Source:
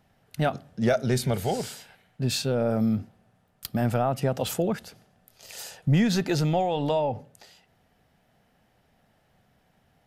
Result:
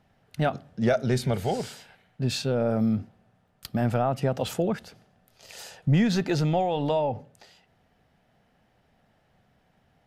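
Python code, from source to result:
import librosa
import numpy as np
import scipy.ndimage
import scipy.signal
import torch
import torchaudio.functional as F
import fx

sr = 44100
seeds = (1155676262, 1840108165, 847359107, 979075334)

y = fx.high_shelf(x, sr, hz=8300.0, db=-11.0)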